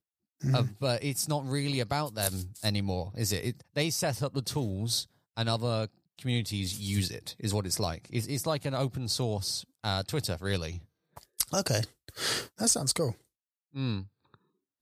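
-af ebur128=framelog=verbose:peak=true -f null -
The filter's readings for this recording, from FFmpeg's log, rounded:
Integrated loudness:
  I:         -31.2 LUFS
  Threshold: -41.5 LUFS
Loudness range:
  LRA:         1.7 LU
  Threshold: -51.6 LUFS
  LRA low:   -32.3 LUFS
  LRA high:  -30.6 LUFS
True peak:
  Peak:       -8.6 dBFS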